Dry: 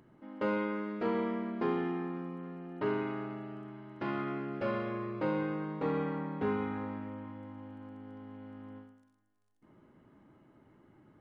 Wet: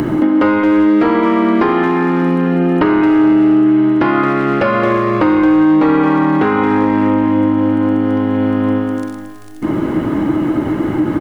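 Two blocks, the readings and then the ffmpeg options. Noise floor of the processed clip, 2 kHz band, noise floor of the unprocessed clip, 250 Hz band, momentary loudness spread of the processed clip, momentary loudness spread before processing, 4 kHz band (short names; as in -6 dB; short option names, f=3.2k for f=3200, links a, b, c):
-23 dBFS, +22.5 dB, -68 dBFS, +26.5 dB, 7 LU, 15 LU, n/a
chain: -filter_complex "[0:a]acrossover=split=790|1700[a][b][c];[a]acompressor=threshold=-44dB:ratio=4[d];[b]acompressor=threshold=-42dB:ratio=4[e];[c]acompressor=threshold=-58dB:ratio=4[f];[d][e][f]amix=inputs=3:normalize=0,equalizer=f=310:w=7.3:g=13.5,apsyclip=32.5dB,acompressor=threshold=-19dB:ratio=16,asplit=2[g][h];[h]adelay=220,highpass=300,lowpass=3.4k,asoftclip=type=hard:threshold=-20dB,volume=-7dB[i];[g][i]amix=inputs=2:normalize=0,volume=9dB"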